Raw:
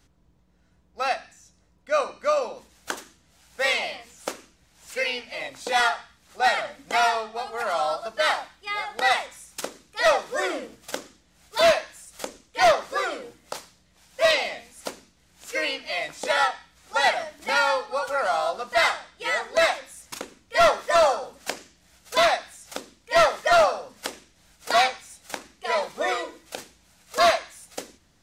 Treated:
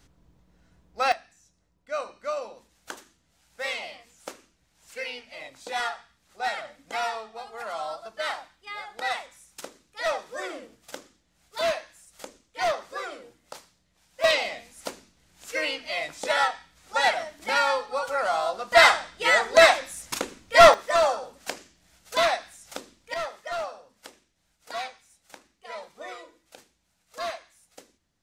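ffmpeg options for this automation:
-af "asetnsamples=n=441:p=0,asendcmd='1.12 volume volume -8dB;14.24 volume volume -1.5dB;18.72 volume volume 5.5dB;20.74 volume volume -3dB;23.14 volume volume -14dB',volume=2dB"

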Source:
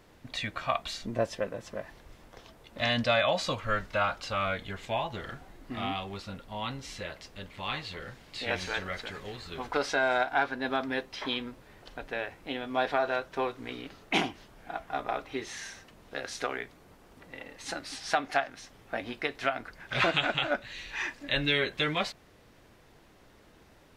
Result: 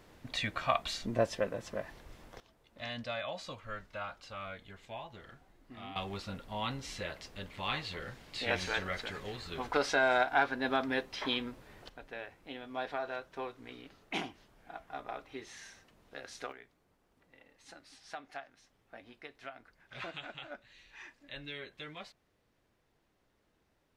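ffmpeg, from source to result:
-af "asetnsamples=n=441:p=0,asendcmd='2.4 volume volume -13dB;5.96 volume volume -1dB;11.89 volume volume -9.5dB;16.52 volume volume -17dB',volume=-0.5dB"

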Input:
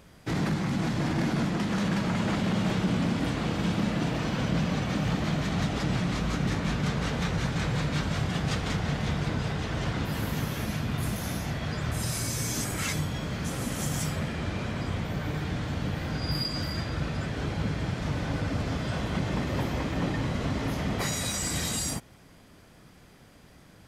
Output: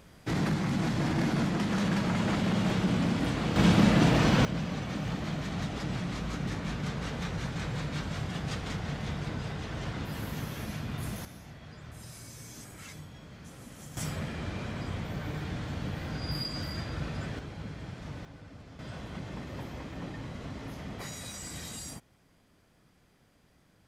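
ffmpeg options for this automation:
-af "asetnsamples=n=441:p=0,asendcmd='3.56 volume volume 6dB;4.45 volume volume -6dB;11.25 volume volume -16dB;13.97 volume volume -4.5dB;17.39 volume volume -11dB;18.25 volume volume -19.5dB;18.79 volume volume -11dB',volume=-1dB"

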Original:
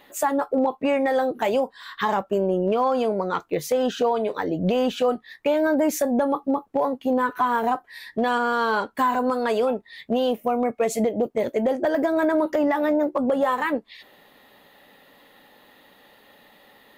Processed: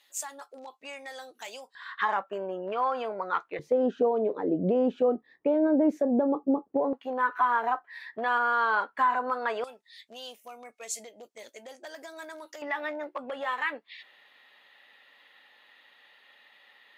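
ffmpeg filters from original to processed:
-af "asetnsamples=n=441:p=0,asendcmd='1.75 bandpass f 1500;3.59 bandpass f 350;6.93 bandpass f 1400;9.64 bandpass f 6500;12.62 bandpass f 2400',bandpass=f=6.4k:t=q:w=1.2:csg=0"

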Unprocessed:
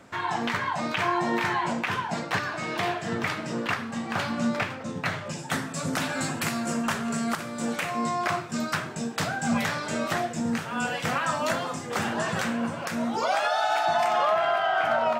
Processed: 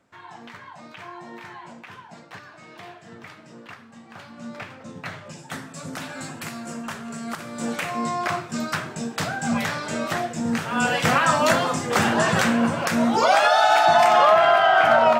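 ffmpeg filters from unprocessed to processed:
-af "volume=8dB,afade=t=in:st=4.33:d=0.5:silence=0.375837,afade=t=in:st=7.21:d=0.45:silence=0.446684,afade=t=in:st=10.39:d=0.6:silence=0.473151"

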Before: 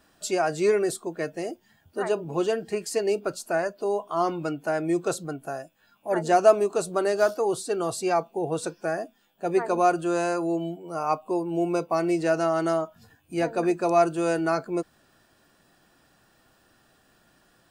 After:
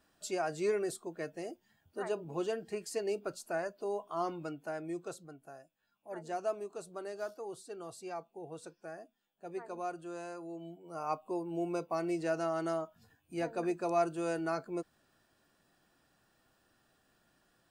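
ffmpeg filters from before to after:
-af "volume=-2dB,afade=t=out:st=4.17:d=1.11:silence=0.398107,afade=t=in:st=10.55:d=0.52:silence=0.398107"

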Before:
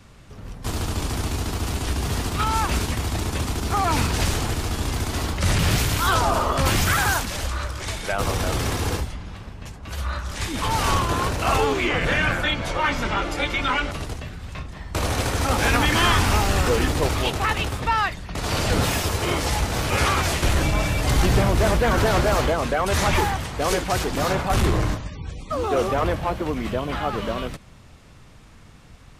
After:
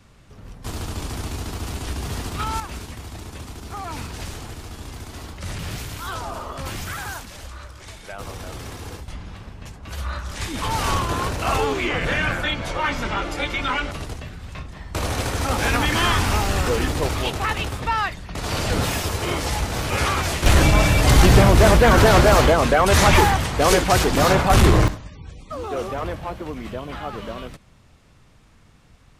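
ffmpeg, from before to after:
-af "asetnsamples=n=441:p=0,asendcmd='2.6 volume volume -10.5dB;9.08 volume volume -1dB;20.46 volume volume 6dB;24.88 volume volume -5.5dB',volume=-3.5dB"

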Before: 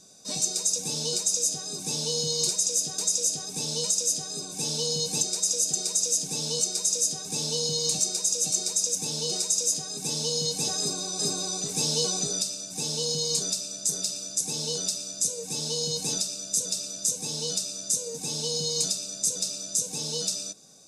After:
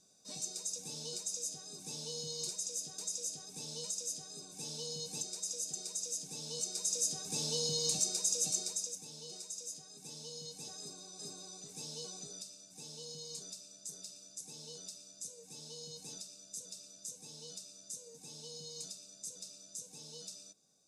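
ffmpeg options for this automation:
-af "volume=-7dB,afade=t=in:st=6.46:d=0.75:silence=0.446684,afade=t=out:st=8.42:d=0.61:silence=0.251189"

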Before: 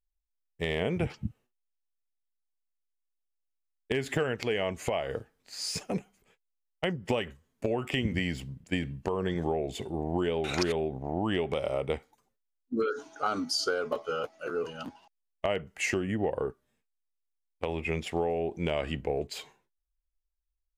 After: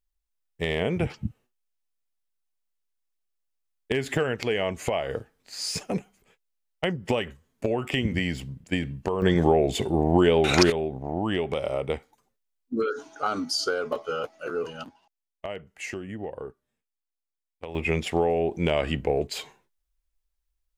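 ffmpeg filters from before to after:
-af "asetnsamples=n=441:p=0,asendcmd='9.22 volume volume 10dB;10.7 volume volume 2.5dB;14.84 volume volume -5.5dB;17.75 volume volume 6dB',volume=3.5dB"

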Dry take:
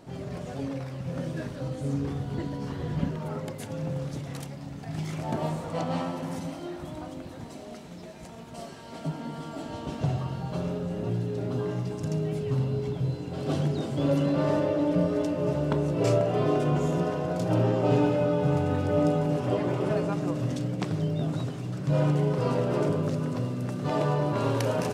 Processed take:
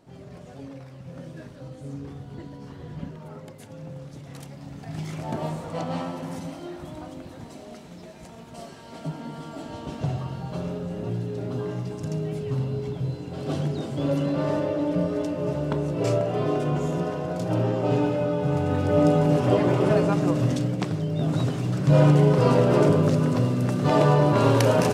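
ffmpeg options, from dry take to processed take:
-af "volume=14dB,afade=t=in:st=4.14:d=0.61:silence=0.446684,afade=t=in:st=18.47:d=0.87:silence=0.473151,afade=t=out:st=20.44:d=0.62:silence=0.473151,afade=t=in:st=21.06:d=0.42:silence=0.421697"

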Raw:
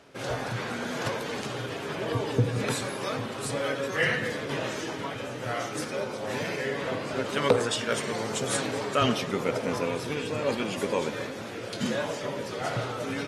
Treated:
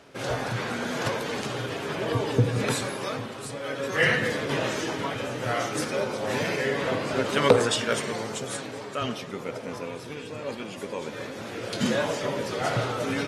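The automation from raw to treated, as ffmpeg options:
-af "volume=22.5dB,afade=t=out:st=2.76:d=0.84:silence=0.375837,afade=t=in:st=3.6:d=0.47:silence=0.316228,afade=t=out:st=7.64:d=0.94:silence=0.316228,afade=t=in:st=10.99:d=0.8:silence=0.316228"

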